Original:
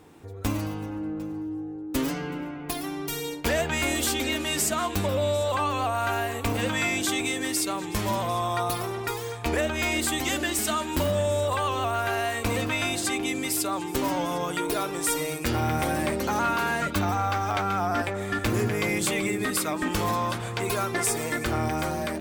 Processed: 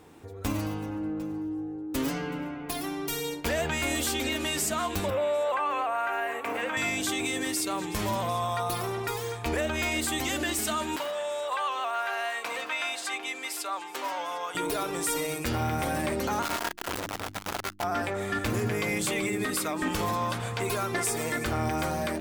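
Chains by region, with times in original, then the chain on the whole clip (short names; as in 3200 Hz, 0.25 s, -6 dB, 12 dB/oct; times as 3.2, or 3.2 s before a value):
5.1–6.77 HPF 420 Hz + resonant high shelf 3000 Hz -9.5 dB, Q 1.5
10.96–14.55 HPF 800 Hz + high shelf 5500 Hz -11.5 dB
16.42–17.84 infinite clipping + comb 3.1 ms, depth 46% + core saturation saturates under 580 Hz
whole clip: notches 50/100/150/200/250/300/350 Hz; limiter -20.5 dBFS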